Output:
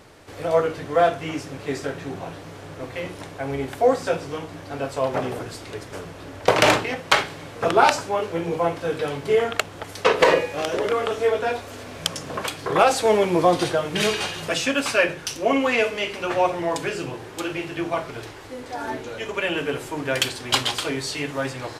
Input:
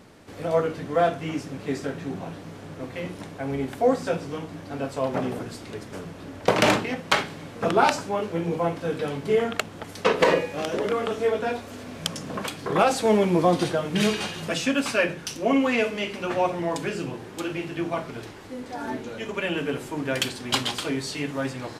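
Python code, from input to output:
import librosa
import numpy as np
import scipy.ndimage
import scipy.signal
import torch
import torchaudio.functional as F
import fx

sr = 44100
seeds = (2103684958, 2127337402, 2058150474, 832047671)

y = fx.peak_eq(x, sr, hz=210.0, db=-10.5, octaves=0.83)
y = y * 10.0 ** (4.0 / 20.0)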